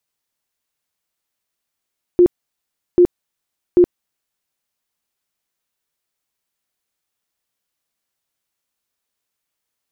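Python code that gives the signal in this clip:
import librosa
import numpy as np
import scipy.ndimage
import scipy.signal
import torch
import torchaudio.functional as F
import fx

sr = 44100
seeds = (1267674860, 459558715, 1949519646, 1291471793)

y = fx.tone_burst(sr, hz=354.0, cycles=25, every_s=0.79, bursts=3, level_db=-6.0)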